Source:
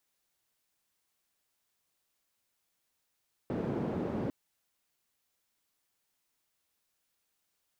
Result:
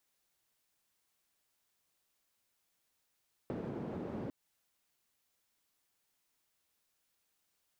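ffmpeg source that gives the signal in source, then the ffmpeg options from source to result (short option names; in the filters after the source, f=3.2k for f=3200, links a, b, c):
-f lavfi -i "anoisesrc=c=white:d=0.8:r=44100:seed=1,highpass=f=140,lowpass=f=310,volume=-8.7dB"
-af "acompressor=threshold=-38dB:ratio=6"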